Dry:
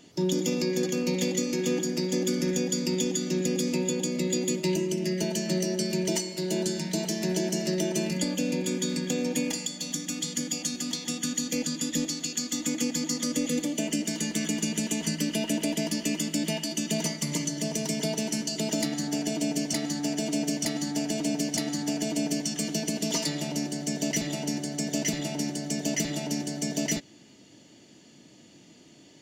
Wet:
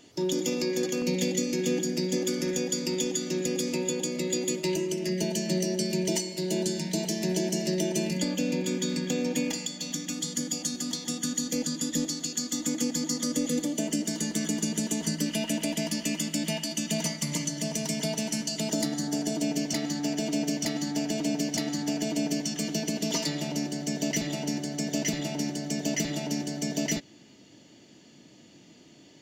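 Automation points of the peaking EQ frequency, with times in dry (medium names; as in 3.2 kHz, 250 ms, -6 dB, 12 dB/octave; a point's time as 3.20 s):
peaking EQ -7.5 dB 0.54 oct
180 Hz
from 1.02 s 1.1 kHz
from 2.17 s 200 Hz
from 5.09 s 1.3 kHz
from 8.21 s 10 kHz
from 10.13 s 2.5 kHz
from 15.26 s 380 Hz
from 18.70 s 2.5 kHz
from 19.42 s 9.5 kHz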